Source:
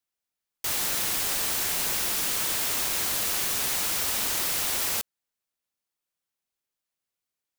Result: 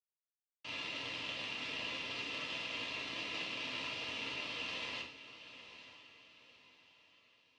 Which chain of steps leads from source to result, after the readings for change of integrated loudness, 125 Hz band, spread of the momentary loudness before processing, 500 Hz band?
-15.0 dB, -11.5 dB, 2 LU, -9.5 dB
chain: gate with hold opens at -22 dBFS; peaking EQ 910 Hz +4 dB 0.36 oct; power-law waveshaper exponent 3; cabinet simulation 110–4000 Hz, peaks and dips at 190 Hz -4 dB, 280 Hz +7 dB, 820 Hz -6 dB, 1.5 kHz -8 dB, 2.7 kHz +10 dB; comb of notches 370 Hz; on a send: echo that smears into a reverb 913 ms, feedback 40%, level -13 dB; on the sum: gated-style reverb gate 150 ms falling, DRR -2 dB; trim +2 dB

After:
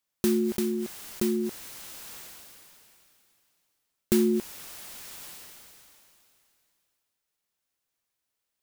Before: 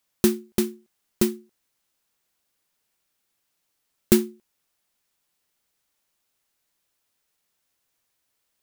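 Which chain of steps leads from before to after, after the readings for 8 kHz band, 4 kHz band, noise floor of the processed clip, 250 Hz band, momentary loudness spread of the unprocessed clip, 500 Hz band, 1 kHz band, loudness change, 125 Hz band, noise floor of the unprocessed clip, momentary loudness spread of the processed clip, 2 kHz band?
-3.5 dB, -3.5 dB, -83 dBFS, -1.0 dB, 12 LU, -1.5 dB, -3.0 dB, -5.0 dB, -4.5 dB, -76 dBFS, 19 LU, -3.5 dB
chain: decay stretcher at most 21 dB/s; trim -7.5 dB

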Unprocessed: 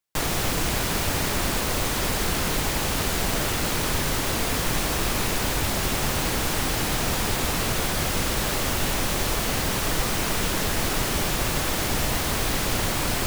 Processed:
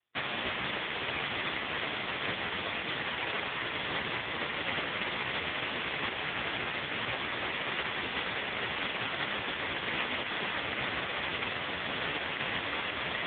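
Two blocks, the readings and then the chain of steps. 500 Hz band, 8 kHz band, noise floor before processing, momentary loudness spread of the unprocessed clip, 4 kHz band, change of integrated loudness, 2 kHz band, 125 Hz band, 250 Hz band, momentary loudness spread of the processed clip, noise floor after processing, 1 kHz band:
-9.5 dB, under -40 dB, -26 dBFS, 0 LU, -6.5 dB, -8.5 dB, -3.0 dB, -17.5 dB, -13.0 dB, 1 LU, -37 dBFS, -7.5 dB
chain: spectral contrast reduction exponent 0.2; peaking EQ 2 kHz +4.5 dB 0.27 oct; trim +2 dB; AMR-NB 4.75 kbps 8 kHz

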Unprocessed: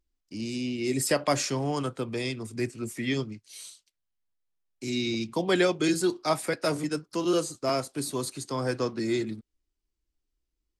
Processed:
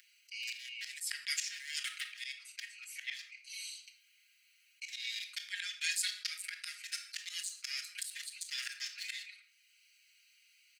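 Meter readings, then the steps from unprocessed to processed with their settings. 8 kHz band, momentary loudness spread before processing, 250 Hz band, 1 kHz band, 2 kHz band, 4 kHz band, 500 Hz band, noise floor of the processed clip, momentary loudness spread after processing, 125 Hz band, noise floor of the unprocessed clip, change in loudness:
-4.5 dB, 12 LU, under -40 dB, -29.0 dB, -4.5 dB, -3.0 dB, under -40 dB, -69 dBFS, 11 LU, under -40 dB, -82 dBFS, -10.5 dB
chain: local Wiener filter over 25 samples; steep high-pass 1.7 kHz 72 dB/octave; peaking EQ 5.8 kHz -3 dB 2.2 oct; comb 4.9 ms, depth 90%; slow attack 733 ms; gain riding within 4 dB 2 s; simulated room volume 430 m³, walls furnished, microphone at 0.58 m; level flattener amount 50%; trim +7.5 dB

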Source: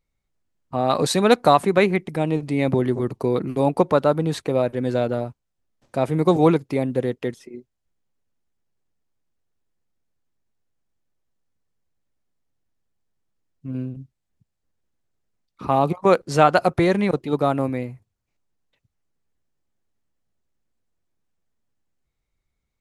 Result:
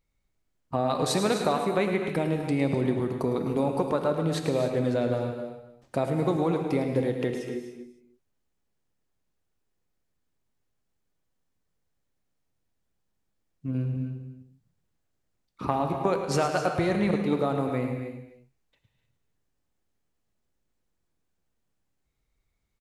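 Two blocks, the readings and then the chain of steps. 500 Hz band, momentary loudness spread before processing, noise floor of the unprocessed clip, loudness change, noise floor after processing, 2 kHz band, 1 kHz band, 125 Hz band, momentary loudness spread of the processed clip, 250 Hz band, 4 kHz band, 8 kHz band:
-6.5 dB, 14 LU, -78 dBFS, -6.5 dB, -77 dBFS, -7.0 dB, -8.5 dB, -4.5 dB, 11 LU, -5.0 dB, -5.5 dB, -3.0 dB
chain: compression, threshold -23 dBFS, peak gain reduction 13.5 dB; on a send: multi-tap echo 107/255 ms -10/-13 dB; on the sum: gated-style reverb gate 330 ms flat, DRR 5.5 dB

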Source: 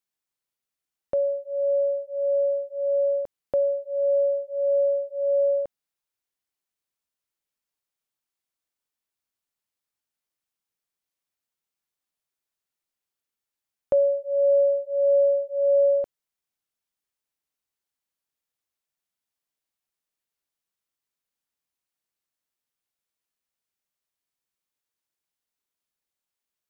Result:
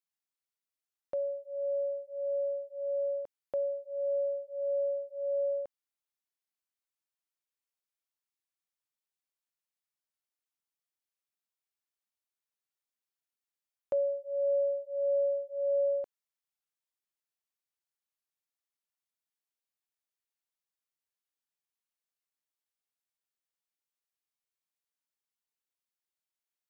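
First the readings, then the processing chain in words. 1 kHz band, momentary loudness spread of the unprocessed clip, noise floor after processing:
no reading, 7 LU, under -85 dBFS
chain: bass shelf 320 Hz -9.5 dB; trim -7 dB

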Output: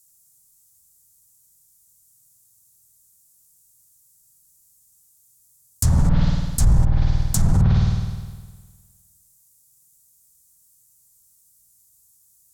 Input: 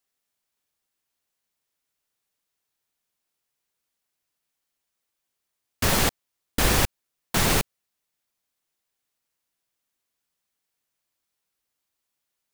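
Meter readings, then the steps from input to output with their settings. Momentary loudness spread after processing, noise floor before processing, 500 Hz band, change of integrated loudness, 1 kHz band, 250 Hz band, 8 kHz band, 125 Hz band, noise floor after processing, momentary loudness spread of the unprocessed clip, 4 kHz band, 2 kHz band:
10 LU, -82 dBFS, -7.5 dB, +3.0 dB, -6.5 dB, +6.0 dB, -1.5 dB, +13.0 dB, -59 dBFS, 7 LU, -9.5 dB, -12.5 dB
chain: single-diode clipper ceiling -13.5 dBFS; FFT filter 140 Hz 0 dB, 370 Hz -25 dB, 890 Hz -19 dB, 2.7 kHz -27 dB, 7.4 kHz +7 dB; spring tank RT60 1.5 s, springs 51 ms, chirp 50 ms, DRR 1.5 dB; low-pass that closes with the level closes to 1.3 kHz, closed at -17.5 dBFS; in parallel at -1 dB: compressor with a negative ratio -33 dBFS, ratio -1; on the sum: loudness maximiser +19 dB; trim -7 dB

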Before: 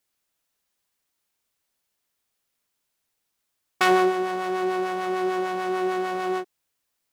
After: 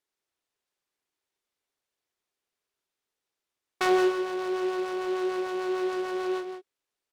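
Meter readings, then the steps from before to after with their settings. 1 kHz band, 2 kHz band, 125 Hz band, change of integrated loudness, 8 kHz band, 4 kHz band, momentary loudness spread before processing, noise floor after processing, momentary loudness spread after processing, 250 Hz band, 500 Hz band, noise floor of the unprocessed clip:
-7.5 dB, -6.0 dB, no reading, -3.5 dB, -4.5 dB, -4.5 dB, 8 LU, under -85 dBFS, 8 LU, -2.0 dB, -2.0 dB, -78 dBFS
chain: low-pass 10 kHz 12 dB/octave; resonant low shelf 240 Hz -7 dB, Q 1.5; small resonant body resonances 400/3600 Hz, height 6 dB; on a send: delay 171 ms -8.5 dB; on the sum: delay time shaken by noise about 2.5 kHz, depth 0.03 ms; trim -7 dB

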